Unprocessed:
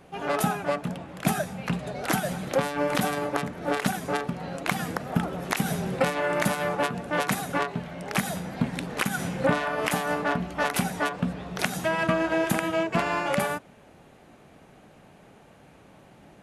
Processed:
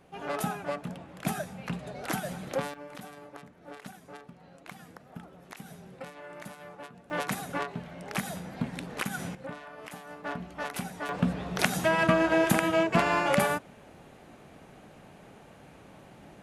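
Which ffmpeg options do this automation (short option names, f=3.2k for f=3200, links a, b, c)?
-af "asetnsamples=n=441:p=0,asendcmd='2.74 volume volume -19dB;7.1 volume volume -6dB;9.35 volume volume -17.5dB;10.24 volume volume -9.5dB;11.09 volume volume 1dB',volume=-6.5dB"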